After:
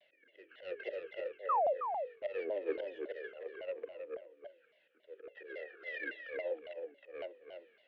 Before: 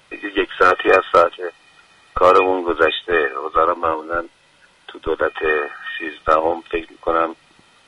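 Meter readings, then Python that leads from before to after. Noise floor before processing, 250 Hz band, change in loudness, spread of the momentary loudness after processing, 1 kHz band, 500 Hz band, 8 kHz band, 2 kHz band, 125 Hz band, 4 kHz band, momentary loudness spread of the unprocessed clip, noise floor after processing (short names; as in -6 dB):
-54 dBFS, -26.5 dB, -22.0 dB, 19 LU, -21.5 dB, -20.5 dB, n/a, -24.5 dB, under -35 dB, -28.5 dB, 14 LU, -72 dBFS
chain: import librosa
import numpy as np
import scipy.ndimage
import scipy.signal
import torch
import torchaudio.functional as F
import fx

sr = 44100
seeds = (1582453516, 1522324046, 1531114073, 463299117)

y = fx.tracing_dist(x, sr, depth_ms=0.36)
y = scipy.signal.sosfilt(scipy.signal.butter(4, 4100.0, 'lowpass', fs=sr, output='sos'), y)
y = fx.notch(y, sr, hz=800.0, q=12.0)
y = fx.dynamic_eq(y, sr, hz=400.0, q=1.4, threshold_db=-27.0, ratio=4.0, max_db=4)
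y = fx.auto_swell(y, sr, attack_ms=680.0)
y = fx.vowel_filter(y, sr, vowel='e')
y = fx.spec_paint(y, sr, seeds[0], shape='fall', start_s=1.49, length_s=0.25, low_hz=460.0, high_hz=1300.0, level_db=-25.0)
y = fx.hum_notches(y, sr, base_hz=50, count=10)
y = y + 10.0 ** (-6.5 / 20.0) * np.pad(y, (int(321 * sr / 1000.0), 0))[:len(y)]
y = fx.vibrato_shape(y, sr, shape='saw_down', rate_hz=3.6, depth_cents=250.0)
y = y * librosa.db_to_amplitude(-4.5)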